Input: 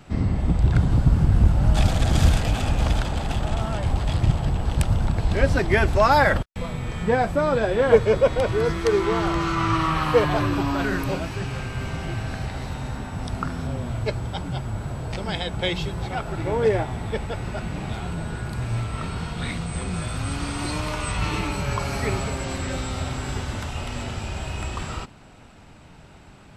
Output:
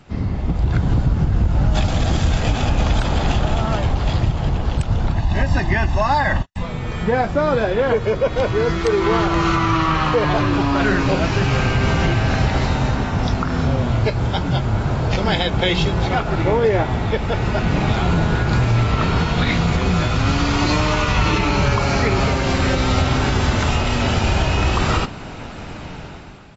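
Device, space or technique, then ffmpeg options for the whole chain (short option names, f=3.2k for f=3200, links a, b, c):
low-bitrate web radio: -filter_complex "[0:a]asplit=3[a][b][c];[a]afade=t=out:st=5.14:d=0.02[d];[b]aecho=1:1:1.1:0.71,afade=t=in:st=5.14:d=0.02,afade=t=out:st=6.62:d=0.02[e];[c]afade=t=in:st=6.62:d=0.02[f];[d][e][f]amix=inputs=3:normalize=0,dynaudnorm=f=160:g=9:m=15.5dB,alimiter=limit=-8.5dB:level=0:latency=1:release=119" -ar 24000 -c:a aac -b:a 24k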